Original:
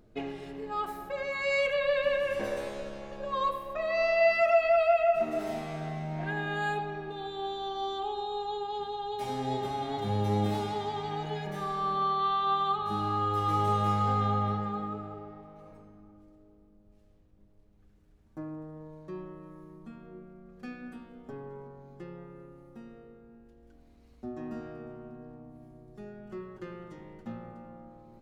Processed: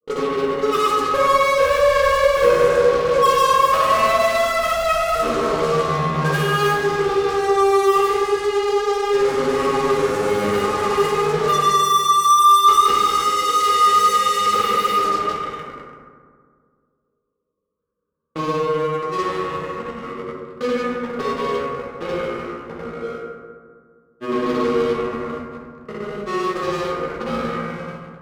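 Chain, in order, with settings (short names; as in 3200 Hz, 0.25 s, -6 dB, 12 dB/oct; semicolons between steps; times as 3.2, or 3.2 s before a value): double band-pass 740 Hz, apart 1.2 oct; spectral gate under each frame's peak -25 dB strong; in parallel at -7 dB: fuzz box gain 54 dB, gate -58 dBFS; on the sum: grains, pitch spread up and down by 0 st; reverb RT60 1.8 s, pre-delay 3 ms, DRR -3 dB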